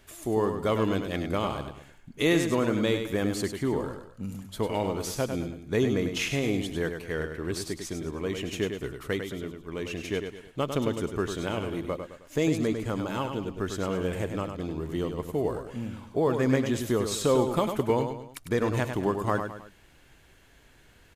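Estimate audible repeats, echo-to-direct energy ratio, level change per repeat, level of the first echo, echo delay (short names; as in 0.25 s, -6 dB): 3, -6.5 dB, no steady repeat, -7.0 dB, 0.1 s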